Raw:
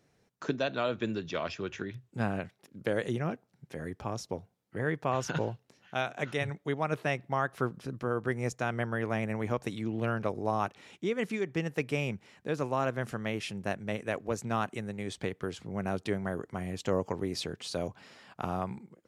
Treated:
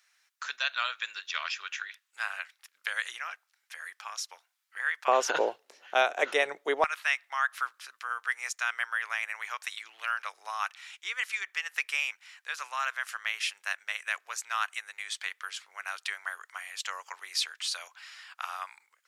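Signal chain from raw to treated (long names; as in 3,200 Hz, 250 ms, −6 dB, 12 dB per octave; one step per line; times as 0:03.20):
high-pass filter 1,300 Hz 24 dB per octave, from 0:05.08 430 Hz, from 0:06.84 1,300 Hz
level +8 dB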